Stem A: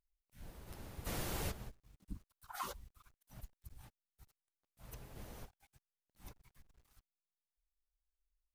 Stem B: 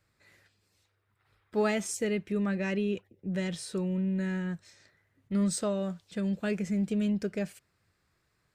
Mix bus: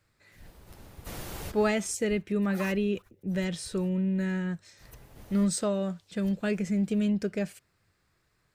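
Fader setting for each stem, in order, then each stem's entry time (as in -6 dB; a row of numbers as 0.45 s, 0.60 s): +1.0 dB, +2.0 dB; 0.00 s, 0.00 s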